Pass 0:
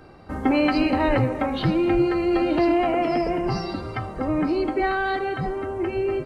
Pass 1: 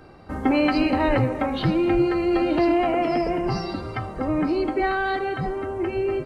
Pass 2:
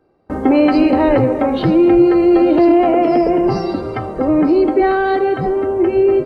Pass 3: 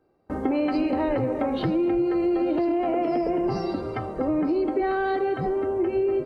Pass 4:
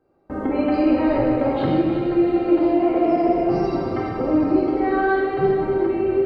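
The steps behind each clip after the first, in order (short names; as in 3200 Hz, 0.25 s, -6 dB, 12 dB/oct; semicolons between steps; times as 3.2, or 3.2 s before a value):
nothing audible
gate with hold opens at -32 dBFS; bell 420 Hz +11 dB 2.1 oct; in parallel at -1 dB: limiter -8 dBFS, peak gain reduction 7.5 dB; on the sum: gain -4 dB
compressor, threshold -13 dBFS, peak gain reduction 6.5 dB; gain -7.5 dB
high shelf 4600 Hz -10.5 dB; thin delay 0.348 s, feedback 61%, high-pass 2200 Hz, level -8.5 dB; reverb RT60 1.9 s, pre-delay 26 ms, DRR -4 dB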